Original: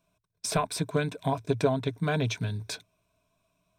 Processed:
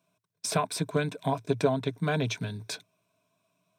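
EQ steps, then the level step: high-pass 120 Hz 24 dB/octave; 0.0 dB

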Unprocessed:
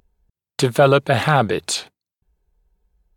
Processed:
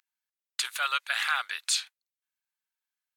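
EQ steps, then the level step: high-pass 1.4 kHz 24 dB/octave; -3.5 dB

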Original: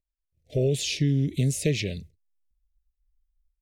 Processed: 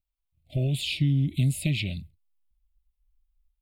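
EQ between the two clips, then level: static phaser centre 1.7 kHz, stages 6; +2.0 dB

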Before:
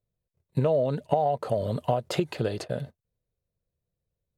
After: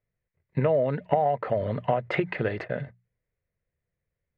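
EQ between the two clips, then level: resonant low-pass 2 kHz, resonance Q 4.9; hum notches 60/120/180 Hz; 0.0 dB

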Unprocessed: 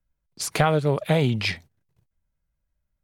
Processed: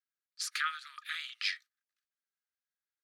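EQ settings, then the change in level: rippled Chebyshev high-pass 1.2 kHz, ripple 6 dB; treble shelf 5.8 kHz -7.5 dB; -1.5 dB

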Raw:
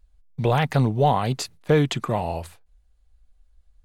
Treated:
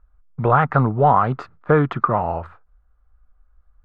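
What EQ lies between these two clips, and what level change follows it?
resonant low-pass 1.3 kHz, resonance Q 5.7; +1.5 dB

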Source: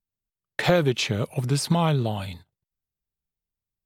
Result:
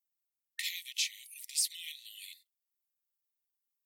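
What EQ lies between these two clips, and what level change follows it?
brick-wall FIR high-pass 1.8 kHz; differentiator; 0.0 dB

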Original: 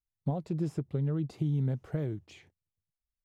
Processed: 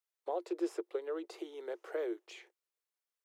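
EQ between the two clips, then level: rippled Chebyshev high-pass 340 Hz, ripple 3 dB; +4.5 dB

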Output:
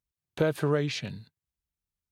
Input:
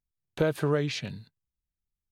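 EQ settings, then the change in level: high-pass 40 Hz; 0.0 dB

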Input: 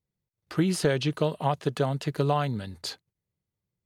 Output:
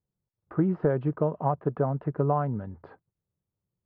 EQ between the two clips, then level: low-pass 1.3 kHz 24 dB/octave; 0.0 dB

